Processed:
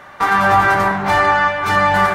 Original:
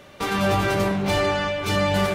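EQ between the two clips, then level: band shelf 1200 Hz +13.5 dB; 0.0 dB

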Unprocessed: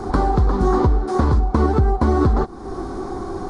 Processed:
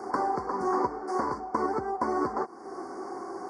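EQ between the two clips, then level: HPF 400 Hz 12 dB/oct; Chebyshev band-stop 2200–4500 Hz, order 5; dynamic EQ 1000 Hz, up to +7 dB, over -44 dBFS, Q 7.1; -6.0 dB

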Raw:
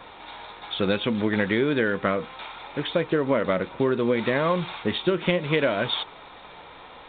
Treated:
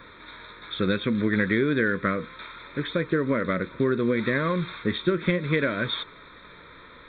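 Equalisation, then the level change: fixed phaser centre 2900 Hz, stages 6; +2.0 dB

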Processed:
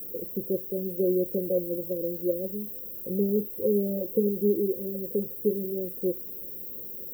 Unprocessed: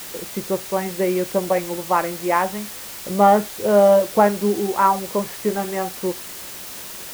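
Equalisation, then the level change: brick-wall FIR band-stop 560–13000 Hz; low shelf 310 Hz -7.5 dB; 0.0 dB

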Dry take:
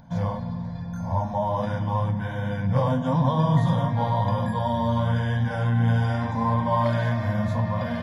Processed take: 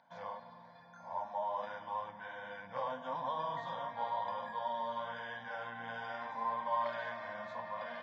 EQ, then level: HPF 750 Hz 12 dB/oct; air absorption 180 m; -7.0 dB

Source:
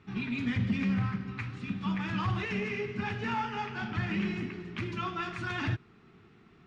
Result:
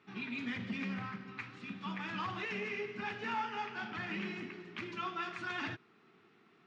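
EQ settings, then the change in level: Bessel high-pass 330 Hz, order 2; air absorption 85 m; high shelf 6000 Hz +7.5 dB; -3.0 dB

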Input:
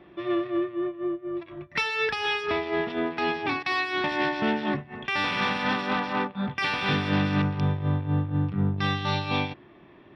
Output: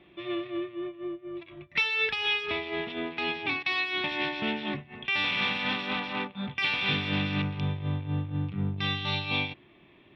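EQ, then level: low shelf 230 Hz +3.5 dB; band shelf 2900 Hz +10 dB 1.1 oct; -7.5 dB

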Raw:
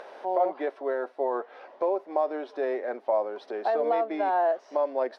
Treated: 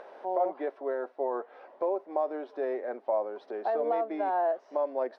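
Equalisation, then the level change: high shelf 2300 Hz -9.5 dB; -2.5 dB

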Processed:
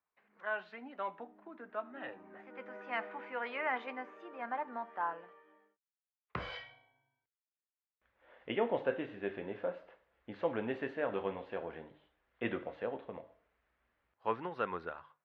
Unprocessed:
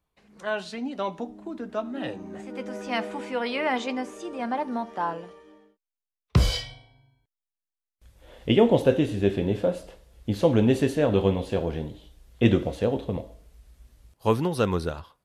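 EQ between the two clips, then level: LPF 1800 Hz 24 dB/oct; differentiator; notches 50/100/150 Hz; +10.0 dB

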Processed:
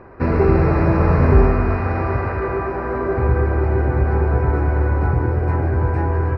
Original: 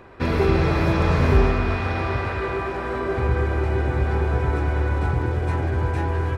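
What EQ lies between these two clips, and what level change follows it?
running mean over 13 samples; +4.5 dB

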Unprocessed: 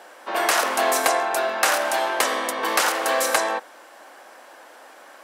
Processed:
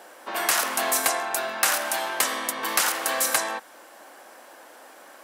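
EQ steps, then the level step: low shelf 260 Hz +8.5 dB; dynamic EQ 450 Hz, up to -8 dB, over -35 dBFS, Q 0.77; high shelf 8600 Hz +10 dB; -3.0 dB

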